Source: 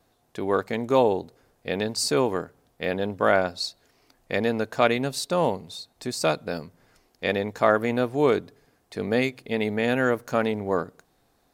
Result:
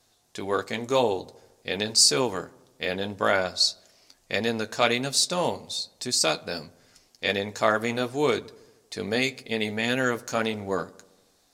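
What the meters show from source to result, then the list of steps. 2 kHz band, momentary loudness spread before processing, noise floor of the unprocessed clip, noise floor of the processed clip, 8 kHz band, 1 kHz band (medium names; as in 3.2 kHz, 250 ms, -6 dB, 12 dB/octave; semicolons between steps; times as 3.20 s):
+0.5 dB, 12 LU, -67 dBFS, -65 dBFS, +9.5 dB, -2.0 dB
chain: peaking EQ 6.2 kHz +14.5 dB 2.3 oct; flange 1.8 Hz, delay 7.7 ms, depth 3.5 ms, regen -49%; on a send: filtered feedback delay 78 ms, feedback 66%, low-pass 2 kHz, level -22.5 dB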